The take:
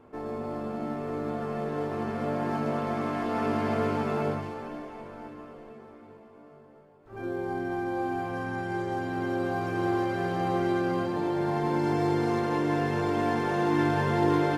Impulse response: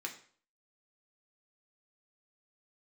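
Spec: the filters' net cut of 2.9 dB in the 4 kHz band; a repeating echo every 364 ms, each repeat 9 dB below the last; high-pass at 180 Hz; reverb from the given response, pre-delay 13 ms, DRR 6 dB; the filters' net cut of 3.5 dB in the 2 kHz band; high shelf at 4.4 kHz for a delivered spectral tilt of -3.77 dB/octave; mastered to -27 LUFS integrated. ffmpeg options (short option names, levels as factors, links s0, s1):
-filter_complex "[0:a]highpass=180,equalizer=f=2000:t=o:g=-4.5,equalizer=f=4000:t=o:g=-4,highshelf=f=4400:g=3.5,aecho=1:1:364|728|1092|1456:0.355|0.124|0.0435|0.0152,asplit=2[s0][s1];[1:a]atrim=start_sample=2205,adelay=13[s2];[s1][s2]afir=irnorm=-1:irlink=0,volume=0.473[s3];[s0][s3]amix=inputs=2:normalize=0,volume=1.33"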